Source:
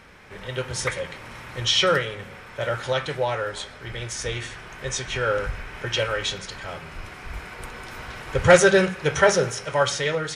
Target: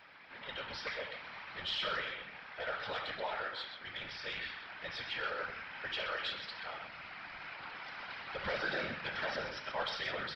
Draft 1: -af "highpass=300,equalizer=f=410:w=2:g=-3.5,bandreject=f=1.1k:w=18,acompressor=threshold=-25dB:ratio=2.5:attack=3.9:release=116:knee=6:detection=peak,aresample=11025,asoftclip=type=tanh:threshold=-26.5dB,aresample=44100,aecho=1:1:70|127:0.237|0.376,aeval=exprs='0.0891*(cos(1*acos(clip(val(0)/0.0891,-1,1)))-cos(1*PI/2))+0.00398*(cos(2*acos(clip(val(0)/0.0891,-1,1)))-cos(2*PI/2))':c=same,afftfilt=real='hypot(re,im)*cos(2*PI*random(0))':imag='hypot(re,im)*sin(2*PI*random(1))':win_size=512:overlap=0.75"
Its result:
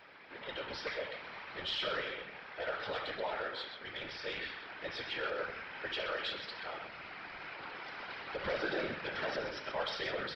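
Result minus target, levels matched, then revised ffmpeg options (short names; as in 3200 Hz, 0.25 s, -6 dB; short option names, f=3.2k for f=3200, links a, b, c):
500 Hz band +3.5 dB
-af "highpass=300,equalizer=f=410:w=2:g=-15,bandreject=f=1.1k:w=18,acompressor=threshold=-25dB:ratio=2.5:attack=3.9:release=116:knee=6:detection=peak,aresample=11025,asoftclip=type=tanh:threshold=-26.5dB,aresample=44100,aecho=1:1:70|127:0.237|0.376,aeval=exprs='0.0891*(cos(1*acos(clip(val(0)/0.0891,-1,1)))-cos(1*PI/2))+0.00398*(cos(2*acos(clip(val(0)/0.0891,-1,1)))-cos(2*PI/2))':c=same,afftfilt=real='hypot(re,im)*cos(2*PI*random(0))':imag='hypot(re,im)*sin(2*PI*random(1))':win_size=512:overlap=0.75"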